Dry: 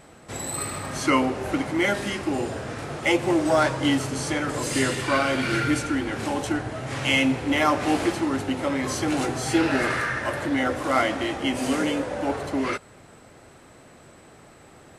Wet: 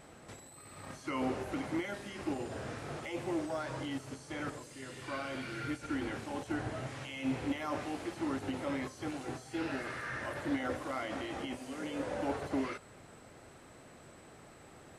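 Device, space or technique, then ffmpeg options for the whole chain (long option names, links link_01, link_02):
de-esser from a sidechain: -filter_complex "[0:a]asplit=2[link_01][link_02];[link_02]highpass=6500,apad=whole_len=660768[link_03];[link_01][link_03]sidechaincompress=threshold=-53dB:ratio=6:attack=1.9:release=24,volume=-5.5dB"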